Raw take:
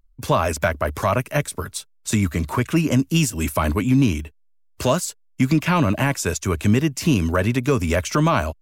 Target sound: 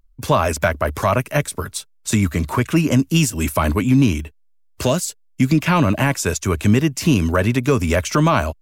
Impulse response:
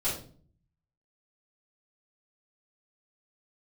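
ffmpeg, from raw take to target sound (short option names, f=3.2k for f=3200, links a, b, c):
-filter_complex "[0:a]asettb=1/sr,asplit=3[a][b][c];[a]atrim=end=4.874[d];[b]atrim=start=4.87:end=5.6,asetpts=PTS-STARTPTS,afade=t=in:d=0.004:c=qsin,afade=t=out:st=0.726:d=0.004:c=qsin,equalizer=f=1.1k:t=o:w=1.2:g=-6.5[e];[c]atrim=start=5.596[f];[d][e]acrossfade=d=0.004:c1=hsin:c2=qsin[g];[g][f]acrossfade=d=0.004:c1=qsin:c2=hsin,volume=2.5dB"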